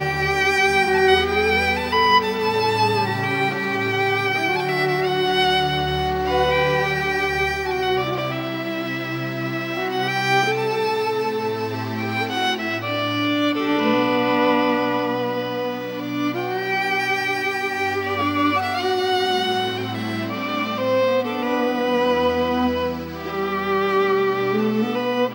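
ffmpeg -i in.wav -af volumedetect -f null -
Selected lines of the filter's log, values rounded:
mean_volume: -20.9 dB
max_volume: -5.1 dB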